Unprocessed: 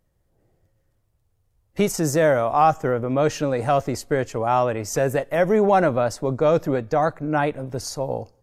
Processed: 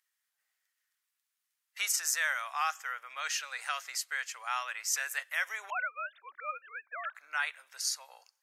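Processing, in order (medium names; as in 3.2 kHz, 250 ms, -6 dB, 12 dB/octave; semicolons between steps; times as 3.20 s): 5.70–7.15 s: formants replaced by sine waves; high-pass 1.5 kHz 24 dB/octave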